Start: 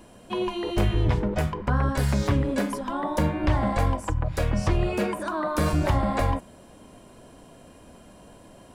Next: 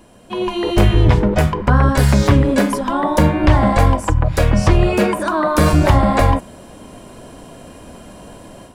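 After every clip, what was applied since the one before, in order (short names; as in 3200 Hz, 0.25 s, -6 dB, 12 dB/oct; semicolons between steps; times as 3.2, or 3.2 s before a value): AGC gain up to 9 dB; gain +2.5 dB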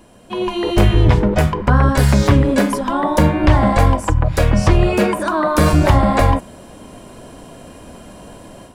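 nothing audible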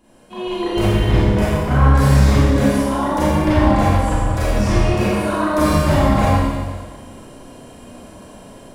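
Schroeder reverb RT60 1.5 s, combs from 29 ms, DRR -9.5 dB; gain -11.5 dB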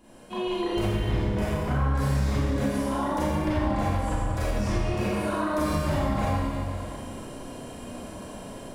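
compressor 2.5:1, threshold -28 dBFS, peak gain reduction 13.5 dB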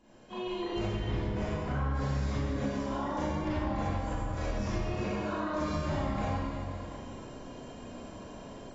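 gain -7 dB; AAC 24 kbps 22050 Hz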